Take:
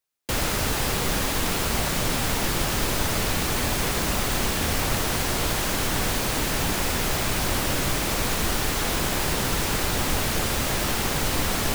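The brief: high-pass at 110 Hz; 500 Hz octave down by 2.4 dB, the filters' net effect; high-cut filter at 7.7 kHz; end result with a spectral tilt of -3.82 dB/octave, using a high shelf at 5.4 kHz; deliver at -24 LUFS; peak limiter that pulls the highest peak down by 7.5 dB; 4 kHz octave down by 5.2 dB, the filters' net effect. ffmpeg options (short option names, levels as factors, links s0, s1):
-af "highpass=110,lowpass=7700,equalizer=f=500:t=o:g=-3,equalizer=f=4000:t=o:g=-3.5,highshelf=f=5400:g=-7,volume=2.51,alimiter=limit=0.168:level=0:latency=1"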